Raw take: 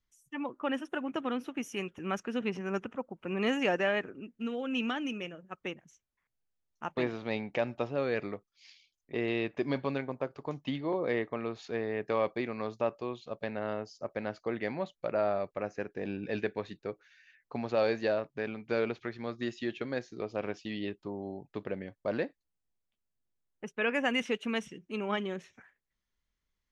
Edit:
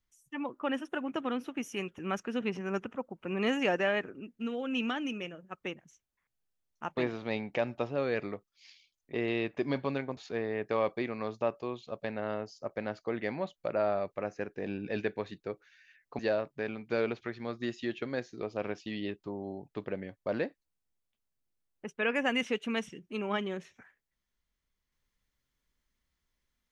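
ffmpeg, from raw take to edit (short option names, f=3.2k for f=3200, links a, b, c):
-filter_complex "[0:a]asplit=3[a][b][c];[a]atrim=end=10.172[d];[b]atrim=start=11.558:end=17.582[e];[c]atrim=start=17.978[f];[d][e]acrossfade=d=0.004:c1=hsin:c2=hsin[g];[g][f]acrossfade=d=0.004:c1=hsin:c2=hsin"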